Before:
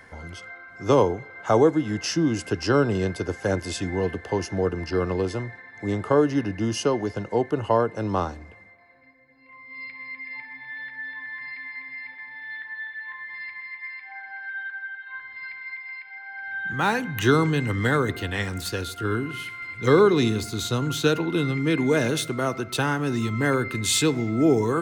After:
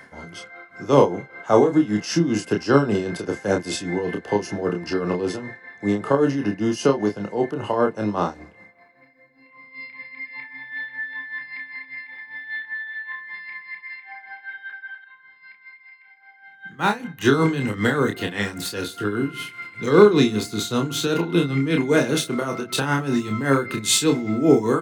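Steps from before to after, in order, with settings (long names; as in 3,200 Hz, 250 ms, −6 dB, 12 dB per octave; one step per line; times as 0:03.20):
low shelf with overshoot 120 Hz −8.5 dB, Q 1.5
hard clipping −8 dBFS, distortion −42 dB
amplitude tremolo 5.1 Hz, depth 69%
double-tracking delay 29 ms −4.5 dB
0:15.04–0:17.33: expander for the loud parts 1.5 to 1, over −37 dBFS
level +4 dB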